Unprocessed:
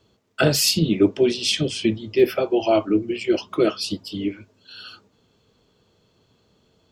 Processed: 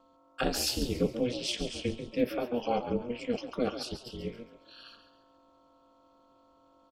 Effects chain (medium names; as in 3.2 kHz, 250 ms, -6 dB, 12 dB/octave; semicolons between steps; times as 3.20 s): mains buzz 400 Hz, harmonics 3, -52 dBFS -2 dB/octave; frequency-shifting echo 138 ms, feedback 37%, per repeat +47 Hz, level -10.5 dB; ring modulator 120 Hz; trim -9 dB